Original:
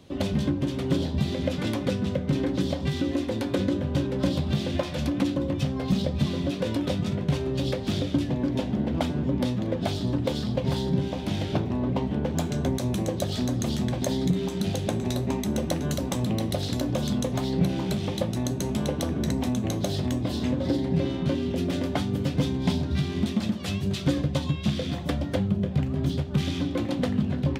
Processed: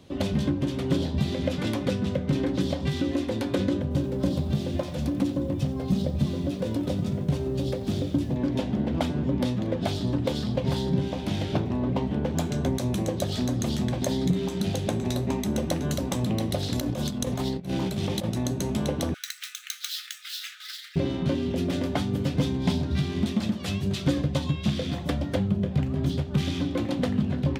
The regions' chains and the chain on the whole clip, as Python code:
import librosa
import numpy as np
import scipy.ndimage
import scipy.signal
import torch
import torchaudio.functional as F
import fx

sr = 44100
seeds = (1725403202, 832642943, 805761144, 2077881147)

y = fx.chain(x, sr, fx.peak_eq(hz=2300.0, db=-7.5, octaves=2.9),
    fx.echo_crushed(ms=89, feedback_pct=35, bits=8, wet_db=-15), at=(3.82, 8.36))
y = fx.chain(y, sr, fx.over_compress(threshold_db=-28.0, ratio=-0.5),
    fx.high_shelf(hz=8100.0, db=5.0), at=(16.75, 18.3))
y = fx.chain(y, sr, fx.median_filter(points=5),
    fx.brickwall_highpass(low_hz=1200.0),
    fx.tilt_eq(slope=3.0), at=(19.14, 20.96))